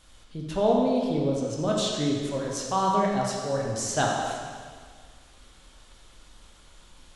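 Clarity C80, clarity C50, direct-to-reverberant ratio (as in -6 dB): 2.0 dB, 0.5 dB, -2.5 dB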